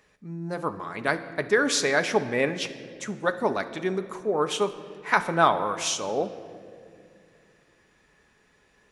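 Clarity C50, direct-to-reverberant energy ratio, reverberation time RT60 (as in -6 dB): 12.5 dB, 7.5 dB, 2.3 s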